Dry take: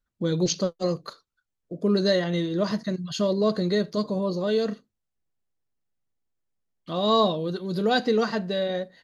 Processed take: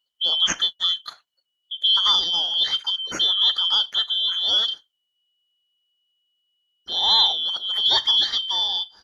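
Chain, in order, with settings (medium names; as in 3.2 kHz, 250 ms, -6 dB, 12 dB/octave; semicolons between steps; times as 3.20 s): four frequency bands reordered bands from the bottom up 3412; trim +3 dB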